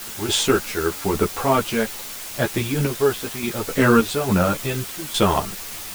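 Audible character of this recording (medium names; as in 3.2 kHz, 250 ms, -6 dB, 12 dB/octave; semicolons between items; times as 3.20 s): random-step tremolo, depth 85%; a quantiser's noise floor 6-bit, dither triangular; a shimmering, thickened sound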